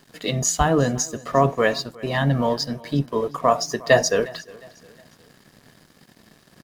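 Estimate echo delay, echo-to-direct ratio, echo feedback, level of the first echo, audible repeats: 358 ms, −21.5 dB, 39%, −22.0 dB, 2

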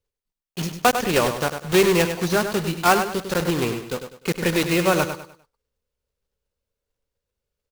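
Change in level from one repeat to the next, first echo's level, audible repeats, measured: −9.5 dB, −8.5 dB, 3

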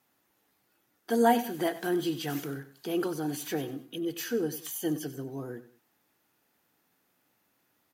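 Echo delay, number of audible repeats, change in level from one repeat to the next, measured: 95 ms, 2, −8.5 dB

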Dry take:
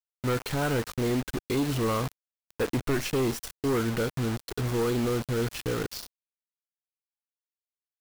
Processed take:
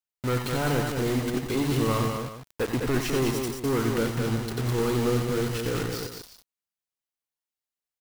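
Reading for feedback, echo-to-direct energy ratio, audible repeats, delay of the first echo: repeats not evenly spaced, −2.0 dB, 3, 89 ms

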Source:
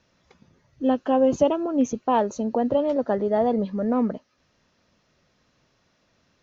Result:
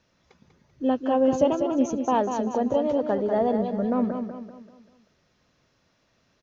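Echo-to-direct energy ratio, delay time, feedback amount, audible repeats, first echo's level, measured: −6.0 dB, 194 ms, 42%, 4, −7.0 dB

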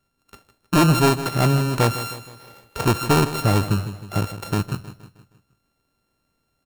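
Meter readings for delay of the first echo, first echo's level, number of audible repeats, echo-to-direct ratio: 157 ms, −13.0 dB, 4, −12.0 dB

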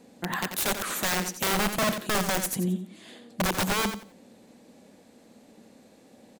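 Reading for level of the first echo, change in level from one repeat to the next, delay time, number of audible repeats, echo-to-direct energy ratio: −9.0 dB, −13.0 dB, 88 ms, 2, −9.0 dB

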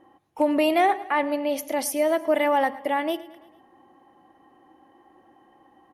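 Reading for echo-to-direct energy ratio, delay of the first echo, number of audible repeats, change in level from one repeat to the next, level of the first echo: −17.5 dB, 111 ms, 3, −5.5 dB, −19.0 dB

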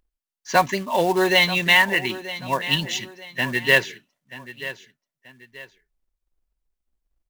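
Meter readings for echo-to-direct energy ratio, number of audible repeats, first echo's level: −14.5 dB, 2, −15.0 dB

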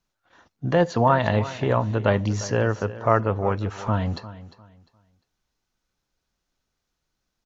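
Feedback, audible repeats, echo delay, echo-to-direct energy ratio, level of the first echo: 26%, 2, 351 ms, −15.5 dB, −16.0 dB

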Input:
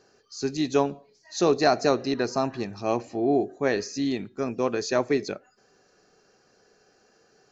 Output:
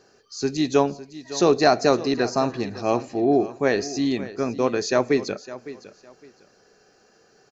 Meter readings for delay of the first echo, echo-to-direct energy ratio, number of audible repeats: 558 ms, −16.0 dB, 2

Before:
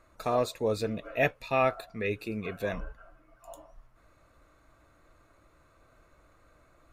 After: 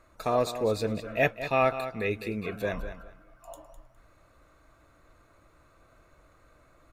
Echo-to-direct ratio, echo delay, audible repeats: −11.5 dB, 205 ms, 2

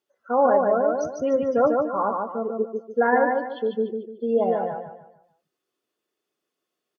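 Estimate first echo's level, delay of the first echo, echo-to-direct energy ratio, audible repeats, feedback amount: −3.5 dB, 147 ms, −3.0 dB, 4, 35%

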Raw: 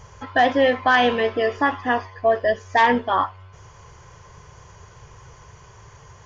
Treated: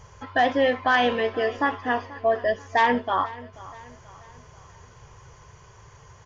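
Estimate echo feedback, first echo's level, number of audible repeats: 45%, −19.0 dB, 3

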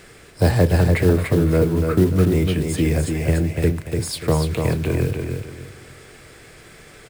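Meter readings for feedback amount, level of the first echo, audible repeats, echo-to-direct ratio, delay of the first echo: 31%, −5.0 dB, 3, −4.5 dB, 292 ms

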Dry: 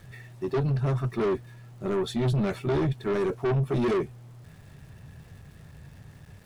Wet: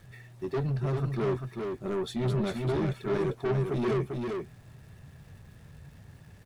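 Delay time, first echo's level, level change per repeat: 395 ms, −4.5 dB, repeats not evenly spaced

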